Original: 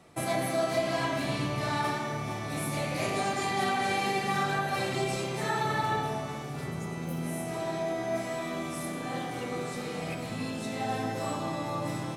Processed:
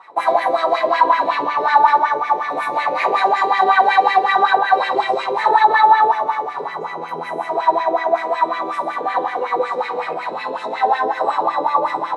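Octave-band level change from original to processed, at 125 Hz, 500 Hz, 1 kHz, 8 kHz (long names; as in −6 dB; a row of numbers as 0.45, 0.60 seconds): below −10 dB, +11.5 dB, +18.5 dB, can't be measured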